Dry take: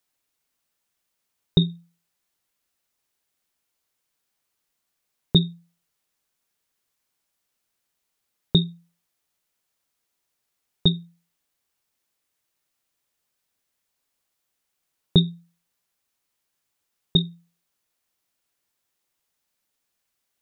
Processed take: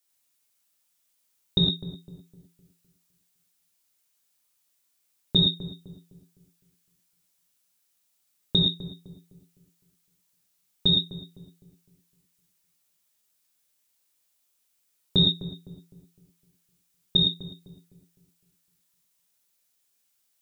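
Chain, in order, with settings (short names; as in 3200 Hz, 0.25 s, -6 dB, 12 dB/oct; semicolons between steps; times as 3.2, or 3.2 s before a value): high shelf 3400 Hz +11 dB; darkening echo 0.255 s, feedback 41%, low-pass 1000 Hz, level -12.5 dB; non-linear reverb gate 0.14 s flat, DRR -2.5 dB; gain -7.5 dB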